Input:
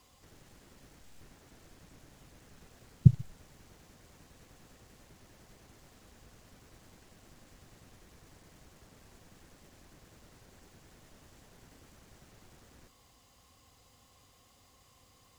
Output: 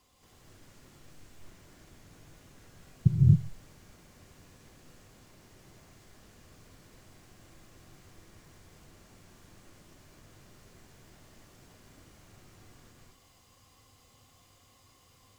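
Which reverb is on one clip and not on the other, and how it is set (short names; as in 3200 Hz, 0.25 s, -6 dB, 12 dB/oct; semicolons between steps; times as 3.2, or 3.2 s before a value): non-linear reverb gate 0.29 s rising, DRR -5 dB; gain -4.5 dB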